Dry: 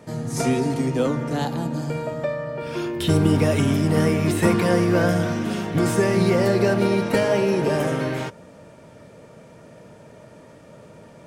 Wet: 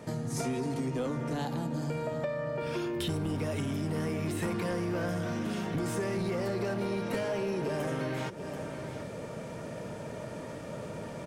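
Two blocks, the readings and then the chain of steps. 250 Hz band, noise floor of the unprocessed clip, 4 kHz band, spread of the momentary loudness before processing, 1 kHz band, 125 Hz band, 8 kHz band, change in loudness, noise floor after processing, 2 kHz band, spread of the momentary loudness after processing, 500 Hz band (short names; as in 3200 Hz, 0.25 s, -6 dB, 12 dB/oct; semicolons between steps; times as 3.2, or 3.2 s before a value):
-11.5 dB, -47 dBFS, -10.0 dB, 9 LU, -10.0 dB, -11.5 dB, -10.0 dB, -12.5 dB, -41 dBFS, -11.0 dB, 8 LU, -11.5 dB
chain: on a send: echo 0.733 s -23.5 dB; on the sum: AGC gain up to 5.5 dB; soft clip -10.5 dBFS, distortion -16 dB; compressor 5:1, threshold -32 dBFS, peak gain reduction 16 dB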